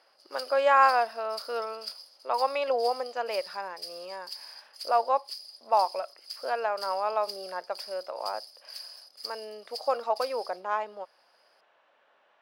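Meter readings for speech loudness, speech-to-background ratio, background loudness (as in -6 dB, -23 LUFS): -29.0 LUFS, 13.0 dB, -42.0 LUFS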